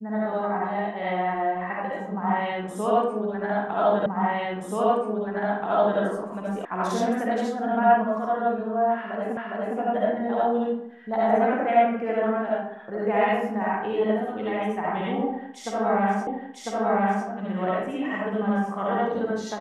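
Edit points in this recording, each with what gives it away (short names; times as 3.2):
4.06 repeat of the last 1.93 s
6.65 sound cut off
9.37 repeat of the last 0.41 s
16.27 repeat of the last 1 s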